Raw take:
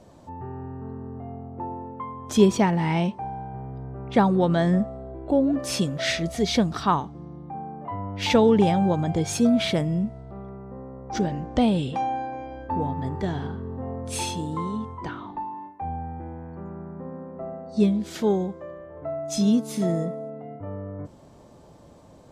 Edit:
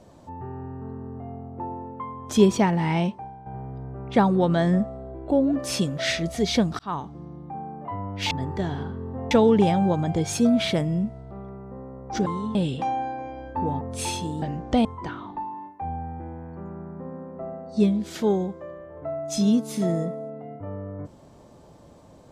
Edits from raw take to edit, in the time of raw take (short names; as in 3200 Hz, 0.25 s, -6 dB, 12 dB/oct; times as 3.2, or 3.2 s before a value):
3.07–3.46 fade out quadratic, to -10 dB
6.79–7.12 fade in
11.26–11.69 swap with 14.56–14.85
12.95–13.95 move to 8.31